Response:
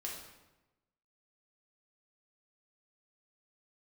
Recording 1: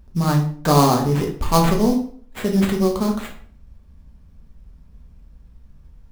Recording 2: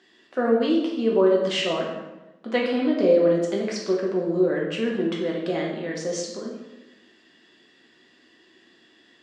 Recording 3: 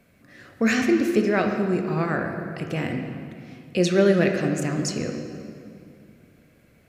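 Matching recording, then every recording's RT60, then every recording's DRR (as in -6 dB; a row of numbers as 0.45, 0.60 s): 2; 0.50, 1.0, 2.5 s; -0.5, -3.0, 4.0 dB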